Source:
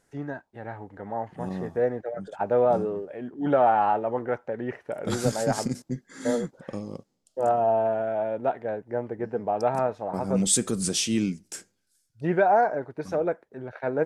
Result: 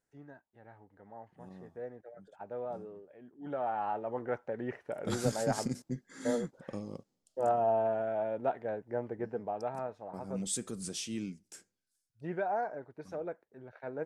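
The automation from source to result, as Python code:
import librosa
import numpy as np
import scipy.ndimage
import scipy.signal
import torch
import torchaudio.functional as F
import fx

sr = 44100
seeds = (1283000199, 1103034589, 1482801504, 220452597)

y = fx.gain(x, sr, db=fx.line((3.34, -18.0), (4.38, -6.0), (9.22, -6.0), (9.71, -13.0)))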